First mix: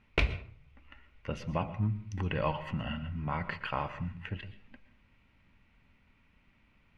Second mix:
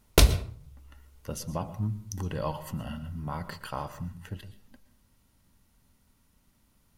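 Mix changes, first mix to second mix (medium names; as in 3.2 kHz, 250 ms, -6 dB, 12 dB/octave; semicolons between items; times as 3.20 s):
background +10.5 dB; master: remove resonant low-pass 2.4 kHz, resonance Q 4.4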